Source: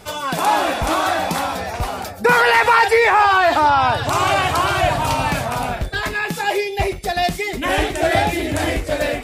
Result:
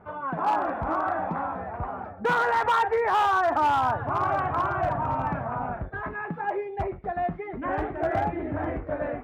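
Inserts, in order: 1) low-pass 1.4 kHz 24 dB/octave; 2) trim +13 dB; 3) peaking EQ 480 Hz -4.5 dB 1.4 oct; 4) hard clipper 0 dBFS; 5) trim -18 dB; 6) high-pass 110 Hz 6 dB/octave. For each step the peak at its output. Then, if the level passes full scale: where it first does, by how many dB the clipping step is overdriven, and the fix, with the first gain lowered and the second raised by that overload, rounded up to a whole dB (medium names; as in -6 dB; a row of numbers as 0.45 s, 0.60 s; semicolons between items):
-5.0 dBFS, +8.0 dBFS, +6.5 dBFS, 0.0 dBFS, -18.0 dBFS, -15.5 dBFS; step 2, 6.5 dB; step 2 +6 dB, step 5 -11 dB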